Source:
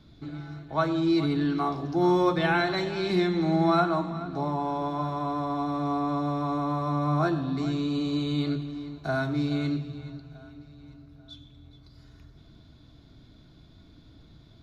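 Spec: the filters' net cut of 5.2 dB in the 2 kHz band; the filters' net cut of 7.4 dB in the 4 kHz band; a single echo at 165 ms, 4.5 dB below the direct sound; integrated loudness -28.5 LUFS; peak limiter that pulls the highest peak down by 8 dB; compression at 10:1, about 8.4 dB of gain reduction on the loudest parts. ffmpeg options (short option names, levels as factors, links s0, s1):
-af "equalizer=f=2000:t=o:g=-6.5,equalizer=f=4000:t=o:g=-6.5,acompressor=threshold=0.0398:ratio=10,alimiter=level_in=1.78:limit=0.0631:level=0:latency=1,volume=0.562,aecho=1:1:165:0.596,volume=2.24"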